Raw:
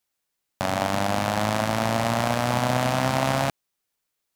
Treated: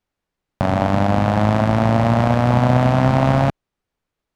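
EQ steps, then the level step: LPF 3500 Hz 6 dB/oct; tilt -2.5 dB/oct; +4.5 dB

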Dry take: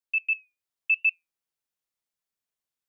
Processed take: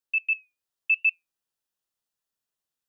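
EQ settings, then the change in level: notch 2200 Hz, Q 5.8; +1.5 dB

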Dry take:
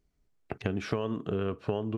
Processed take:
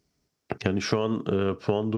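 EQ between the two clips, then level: HPF 95 Hz; bell 5300 Hz +10 dB 0.52 oct; +6.0 dB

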